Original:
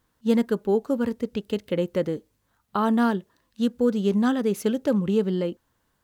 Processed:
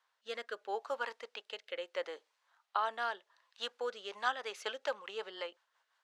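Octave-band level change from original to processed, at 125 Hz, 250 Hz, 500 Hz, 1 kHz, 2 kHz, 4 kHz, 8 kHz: under -40 dB, -37.0 dB, -15.5 dB, -6.5 dB, -2.5 dB, -2.5 dB, n/a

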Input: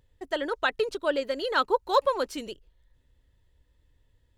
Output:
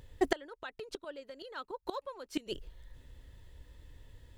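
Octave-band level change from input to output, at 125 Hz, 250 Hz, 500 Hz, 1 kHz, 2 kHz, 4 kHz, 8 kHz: n/a, -3.0 dB, -12.0 dB, -14.5 dB, -13.0 dB, -11.0 dB, -6.0 dB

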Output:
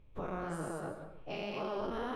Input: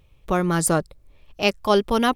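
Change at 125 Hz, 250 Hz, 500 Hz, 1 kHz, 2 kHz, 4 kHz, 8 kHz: -17.5, -18.0, -16.0, -16.5, -18.0, -21.0, -27.5 dB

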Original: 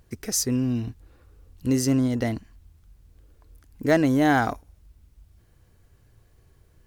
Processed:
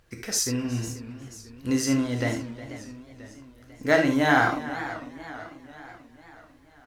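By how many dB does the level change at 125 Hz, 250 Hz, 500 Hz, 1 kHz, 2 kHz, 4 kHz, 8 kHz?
-3.5, -2.5, 0.0, +1.0, +5.0, +2.5, 0.0 dB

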